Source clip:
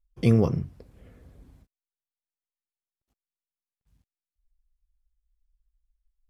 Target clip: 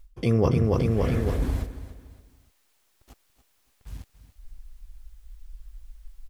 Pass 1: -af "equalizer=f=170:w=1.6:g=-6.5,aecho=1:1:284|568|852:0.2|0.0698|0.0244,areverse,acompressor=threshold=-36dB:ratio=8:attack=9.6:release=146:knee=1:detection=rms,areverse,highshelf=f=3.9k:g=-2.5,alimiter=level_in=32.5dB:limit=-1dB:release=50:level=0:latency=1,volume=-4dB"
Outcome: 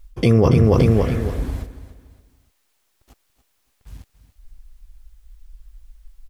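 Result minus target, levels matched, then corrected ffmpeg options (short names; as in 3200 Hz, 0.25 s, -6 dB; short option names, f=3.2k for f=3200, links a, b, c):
compressor: peak gain reduction -10.5 dB
-af "equalizer=f=170:w=1.6:g=-6.5,aecho=1:1:284|568|852:0.2|0.0698|0.0244,areverse,acompressor=threshold=-48dB:ratio=8:attack=9.6:release=146:knee=1:detection=rms,areverse,highshelf=f=3.9k:g=-2.5,alimiter=level_in=32.5dB:limit=-1dB:release=50:level=0:latency=1,volume=-4dB"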